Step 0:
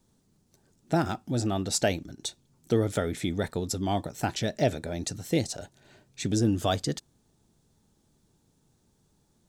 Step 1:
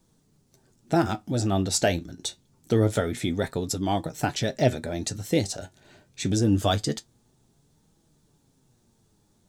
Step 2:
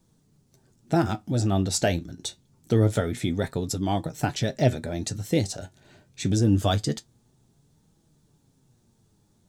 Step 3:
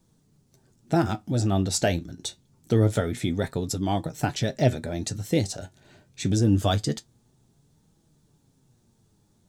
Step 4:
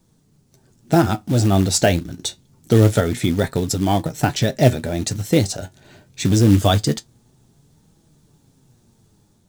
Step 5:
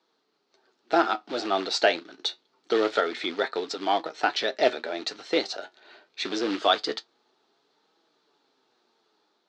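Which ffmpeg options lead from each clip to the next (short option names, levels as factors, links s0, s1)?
-af "flanger=delay=6:depth=5.8:regen=60:speed=0.25:shape=triangular,volume=2.24"
-af "equalizer=f=120:w=0.77:g=4.5,volume=0.841"
-af anull
-af "dynaudnorm=f=460:g=3:m=1.41,acrusher=bits=5:mode=log:mix=0:aa=0.000001,volume=1.68"
-af "highpass=f=400:w=0.5412,highpass=f=400:w=1.3066,equalizer=f=550:t=q:w=4:g=-5,equalizer=f=1300:t=q:w=4:g=5,equalizer=f=4300:t=q:w=4:g=5,lowpass=f=4400:w=0.5412,lowpass=f=4400:w=1.3066,volume=0.794"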